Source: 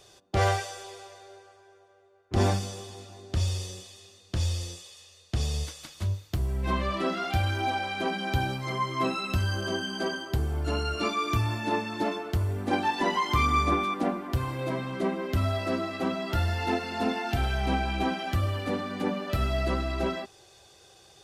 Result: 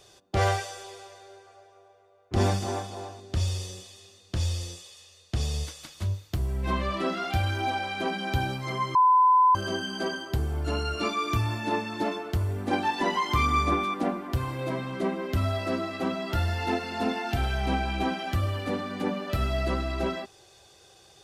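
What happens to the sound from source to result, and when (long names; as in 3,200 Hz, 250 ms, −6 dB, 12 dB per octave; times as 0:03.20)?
0:01.18–0:03.20: feedback echo with a band-pass in the loop 286 ms, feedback 45%, band-pass 760 Hz, level −3 dB
0:08.95–0:09.55: beep over 1,010 Hz −15.5 dBFS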